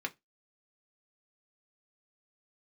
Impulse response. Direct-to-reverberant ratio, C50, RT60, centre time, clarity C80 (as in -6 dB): 2.0 dB, 24.5 dB, 0.15 s, 4 ms, 34.5 dB